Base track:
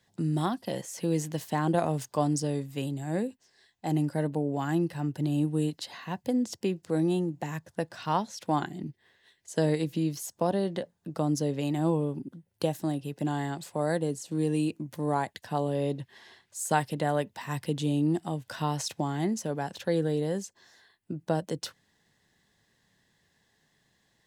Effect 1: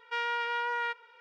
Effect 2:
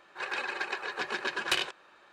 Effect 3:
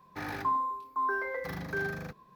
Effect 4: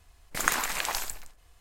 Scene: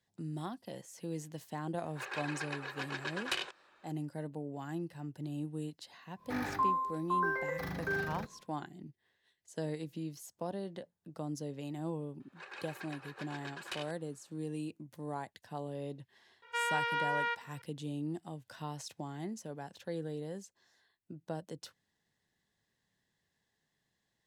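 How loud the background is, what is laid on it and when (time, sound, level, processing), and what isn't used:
base track -12 dB
1.80 s: add 2 -7 dB
6.14 s: add 3 -1.5 dB, fades 0.10 s
12.20 s: add 2 -14 dB
16.42 s: add 1 -1.5 dB
not used: 4

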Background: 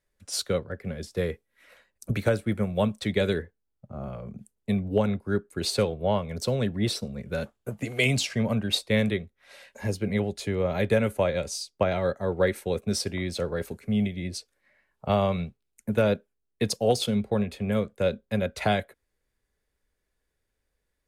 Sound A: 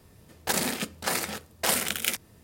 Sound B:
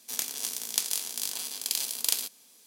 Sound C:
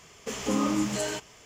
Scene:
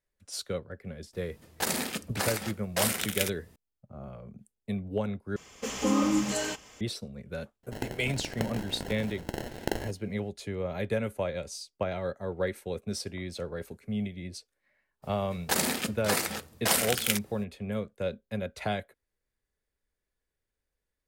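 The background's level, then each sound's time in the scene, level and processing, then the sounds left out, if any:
background -7 dB
1.13 s: add A -3 dB
5.36 s: replace with C -0.5 dB + comb 3.8 ms, depth 37%
7.63 s: add B -5 dB + sample-and-hold 37×
15.02 s: add A -0.5 dB, fades 0.02 s

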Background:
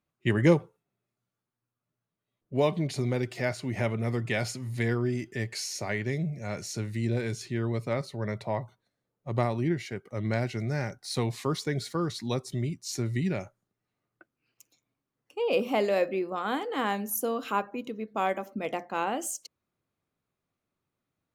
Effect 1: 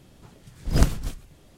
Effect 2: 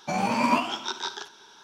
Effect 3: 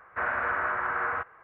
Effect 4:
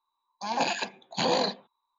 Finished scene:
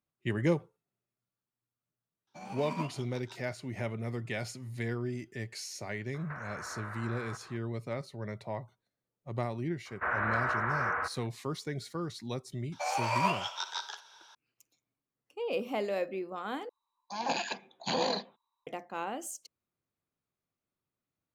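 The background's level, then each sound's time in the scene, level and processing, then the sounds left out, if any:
background -7 dB
2.27 s: add 2 -15 dB + upward expansion, over -45 dBFS
6.14 s: add 3 + compression, threshold -41 dBFS
9.85 s: add 3 -2.5 dB, fades 0.02 s
12.72 s: add 2 -5 dB + steep high-pass 500 Hz 48 dB/octave
16.69 s: replace with 4 -5 dB
not used: 1

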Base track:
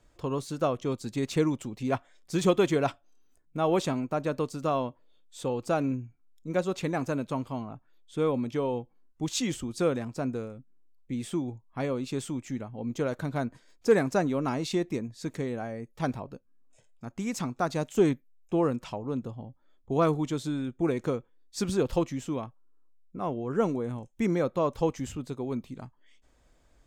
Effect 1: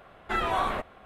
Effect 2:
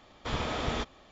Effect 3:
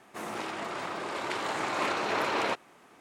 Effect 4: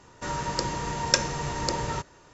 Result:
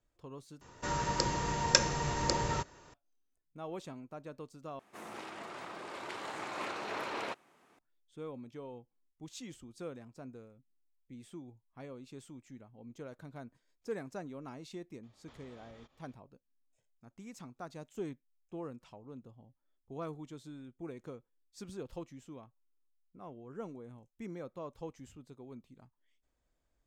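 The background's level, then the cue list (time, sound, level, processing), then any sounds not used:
base track -17 dB
0.61 s: replace with 4 -3 dB
4.79 s: replace with 3 -9.5 dB
15.03 s: add 2 -15 dB + compression, threshold -41 dBFS
not used: 1

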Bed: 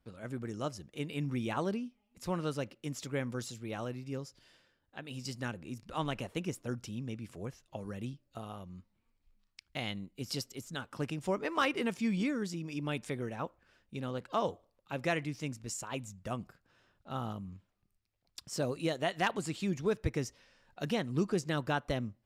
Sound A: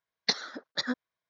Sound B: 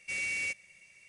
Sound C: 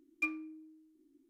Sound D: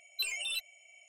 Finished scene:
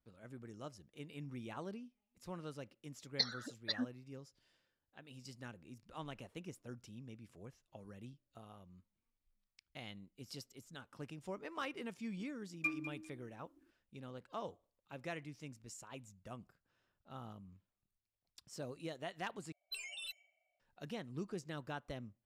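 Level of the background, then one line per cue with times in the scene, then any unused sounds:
bed -12 dB
2.91 s: add A -7 dB + spectral contrast enhancement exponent 1.8
12.42 s: add C -2.5 dB + feedback delay 200 ms, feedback 17%, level -13 dB
19.52 s: replace with D -10.5 dB + level-controlled noise filter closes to 600 Hz, open at -31.5 dBFS
not used: B

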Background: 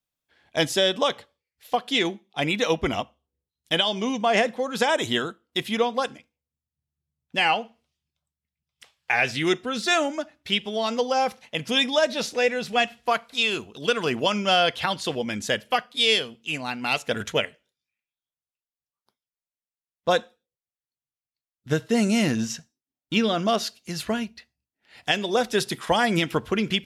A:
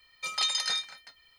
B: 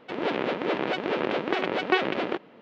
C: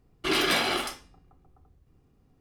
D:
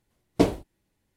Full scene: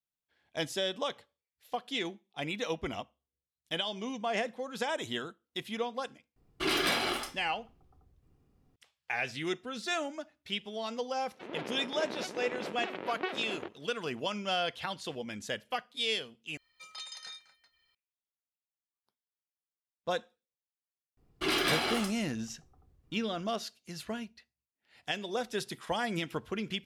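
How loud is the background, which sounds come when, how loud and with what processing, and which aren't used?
background -11.5 dB
6.36 s: add C -4.5 dB
11.31 s: add B -12.5 dB
16.57 s: replace with A -16 dB + upward compressor, threshold -49 dBFS
21.17 s: add C -4.5 dB
not used: D

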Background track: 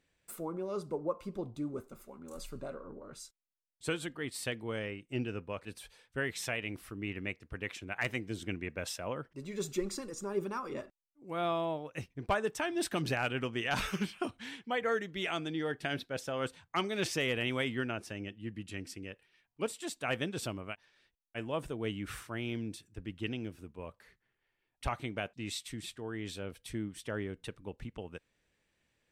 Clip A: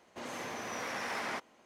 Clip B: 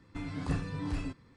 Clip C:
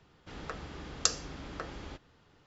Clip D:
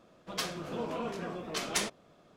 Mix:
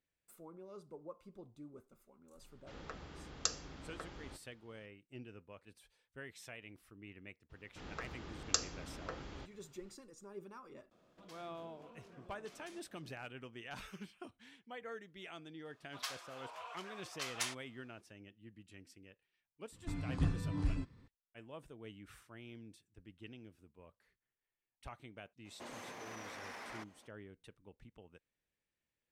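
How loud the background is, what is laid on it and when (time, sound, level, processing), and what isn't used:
background track -15 dB
2.40 s: add C -7.5 dB
7.49 s: add C -5 dB, fades 0.02 s
10.91 s: add D -9 dB + compression 4:1, threshold -49 dBFS
15.65 s: add D -7 dB + high-pass 770 Hz 24 dB/octave
19.72 s: add B -7 dB + bass shelf 200 Hz +9 dB
25.44 s: add A -4 dB, fades 0.02 s + peak limiter -36 dBFS

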